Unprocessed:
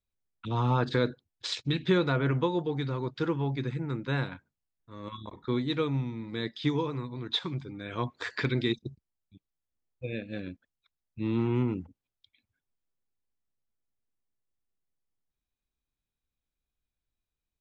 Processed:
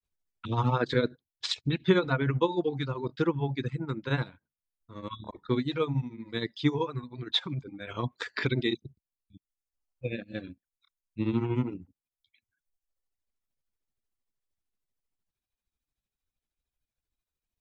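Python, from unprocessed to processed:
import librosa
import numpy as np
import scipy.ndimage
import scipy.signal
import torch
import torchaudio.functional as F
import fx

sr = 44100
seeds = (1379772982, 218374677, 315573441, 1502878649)

y = fx.dereverb_blind(x, sr, rt60_s=1.1)
y = fx.granulator(y, sr, seeds[0], grain_ms=117.0, per_s=13.0, spray_ms=17.0, spread_st=0)
y = y * 10.0 ** (4.0 / 20.0)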